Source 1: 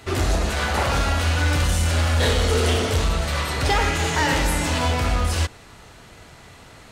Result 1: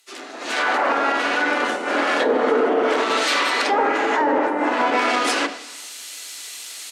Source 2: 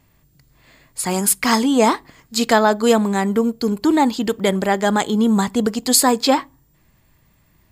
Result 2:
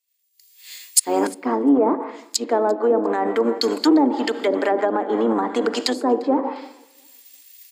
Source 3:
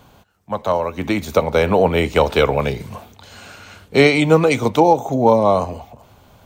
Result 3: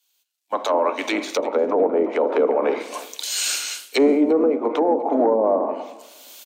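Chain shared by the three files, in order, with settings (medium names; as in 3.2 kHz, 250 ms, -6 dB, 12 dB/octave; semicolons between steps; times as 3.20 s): octave divider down 1 oct, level +2 dB; tilt EQ +3.5 dB/octave; crackle 550 per s -48 dBFS; simulated room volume 660 m³, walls mixed, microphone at 0.4 m; low-pass that closes with the level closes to 460 Hz, closed at -13 dBFS; saturation -6.5 dBFS; dynamic bell 3.4 kHz, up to -5 dB, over -44 dBFS, Q 0.79; steep high-pass 250 Hz 48 dB/octave; feedback delay 349 ms, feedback 41%, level -20 dB; level rider gain up to 13.5 dB; loudness maximiser +8.5 dB; three bands expanded up and down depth 100%; trim -9.5 dB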